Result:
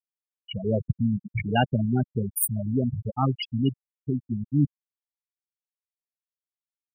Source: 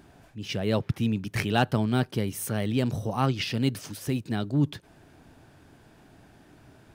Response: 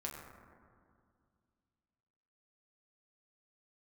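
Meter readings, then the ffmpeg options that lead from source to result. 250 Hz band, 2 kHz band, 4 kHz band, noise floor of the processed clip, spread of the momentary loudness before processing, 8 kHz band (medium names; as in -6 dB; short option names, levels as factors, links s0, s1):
+1.0 dB, -3.0 dB, -3.0 dB, under -85 dBFS, 7 LU, +5.5 dB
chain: -af "aemphasis=mode=production:type=75kf,afftfilt=real='re*gte(hypot(re,im),0.224)':imag='im*gte(hypot(re,im),0.224)':win_size=1024:overlap=0.75,volume=1.26"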